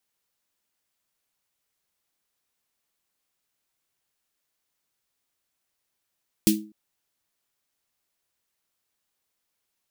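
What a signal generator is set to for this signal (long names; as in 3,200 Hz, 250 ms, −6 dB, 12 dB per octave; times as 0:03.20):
synth snare length 0.25 s, tones 210 Hz, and 320 Hz, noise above 2,500 Hz, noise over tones −3 dB, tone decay 0.39 s, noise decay 0.20 s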